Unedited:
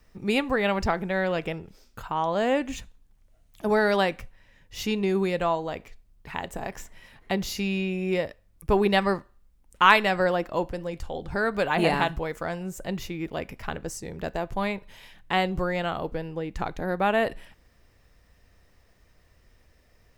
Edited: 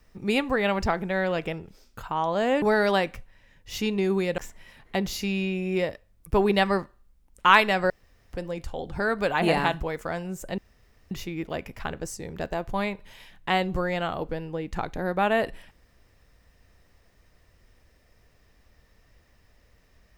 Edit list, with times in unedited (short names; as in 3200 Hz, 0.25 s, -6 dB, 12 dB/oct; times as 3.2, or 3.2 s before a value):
2.62–3.67 cut
5.43–6.74 cut
10.26–10.69 room tone
12.94 insert room tone 0.53 s